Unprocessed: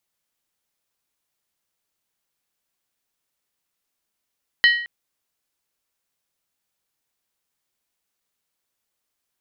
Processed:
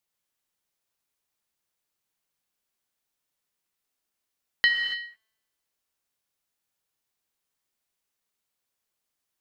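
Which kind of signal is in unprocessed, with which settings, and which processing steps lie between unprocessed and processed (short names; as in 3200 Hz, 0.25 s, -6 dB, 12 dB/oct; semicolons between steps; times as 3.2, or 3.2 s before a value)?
skin hit length 0.22 s, lowest mode 1900 Hz, decay 0.58 s, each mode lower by 6 dB, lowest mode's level -9.5 dB
resonator 220 Hz, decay 1.4 s, mix 40%; non-linear reverb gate 0.31 s flat, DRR 5.5 dB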